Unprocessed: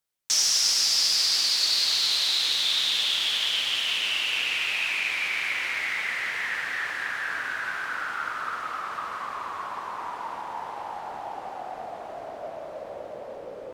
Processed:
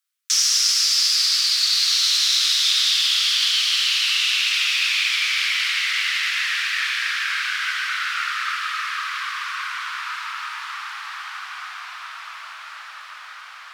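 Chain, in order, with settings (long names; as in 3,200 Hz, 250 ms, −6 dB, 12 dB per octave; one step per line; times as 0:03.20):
Chebyshev high-pass filter 1,200 Hz, order 4
on a send: feedback delay with all-pass diffusion 1,729 ms, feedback 52%, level −5 dB
on the sum: level +4.5 dB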